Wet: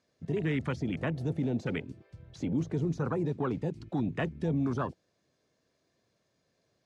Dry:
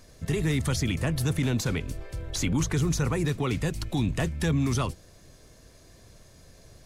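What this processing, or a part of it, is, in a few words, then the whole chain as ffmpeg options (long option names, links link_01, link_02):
over-cleaned archive recording: -af "highpass=170,lowpass=5200,afwtdn=0.02,volume=-1.5dB"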